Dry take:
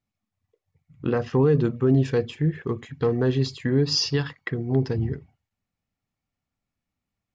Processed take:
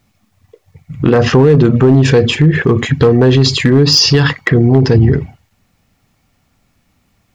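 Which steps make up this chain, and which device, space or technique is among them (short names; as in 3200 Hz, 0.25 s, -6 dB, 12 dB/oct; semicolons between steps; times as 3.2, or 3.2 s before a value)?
loud club master (compressor 2:1, threshold -23 dBFS, peak gain reduction 5 dB; hard clip -18 dBFS, distortion -22 dB; maximiser +27 dB); gain -1 dB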